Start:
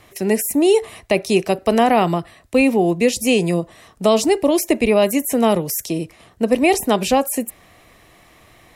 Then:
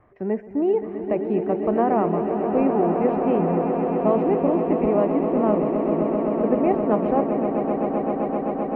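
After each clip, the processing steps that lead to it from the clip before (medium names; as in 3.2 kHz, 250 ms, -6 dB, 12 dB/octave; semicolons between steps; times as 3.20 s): low-pass 1.5 kHz 24 dB/octave; on a send: echo with a slow build-up 130 ms, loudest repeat 8, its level -10 dB; on the sum: trim -6.5 dB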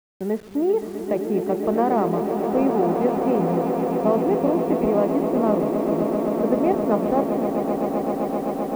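send-on-delta sampling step -40.5 dBFS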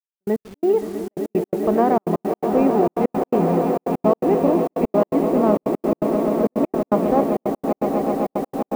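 trance gate "xx.x.x.xxx" 167 bpm -60 dB; trim +3 dB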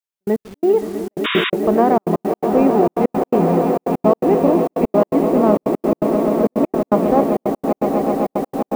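painted sound noise, 1.24–1.50 s, 970–3800 Hz -24 dBFS; trim +3 dB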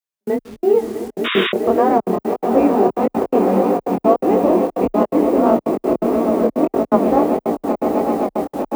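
chorus 1.6 Hz, delay 18.5 ms, depth 7.9 ms; frequency shift +21 Hz; trim +3 dB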